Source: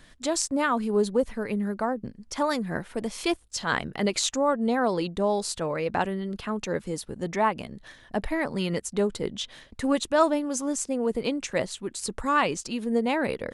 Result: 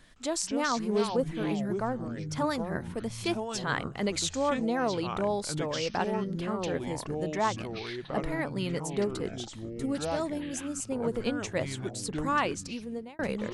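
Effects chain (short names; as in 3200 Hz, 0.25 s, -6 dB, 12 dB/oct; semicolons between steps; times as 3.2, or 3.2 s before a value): 9.31–10.82 bell 1300 Hz -13 dB 2.4 oct; echoes that change speed 0.161 s, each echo -5 st, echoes 3, each echo -6 dB; 12.61–13.19 fade out; gain -4.5 dB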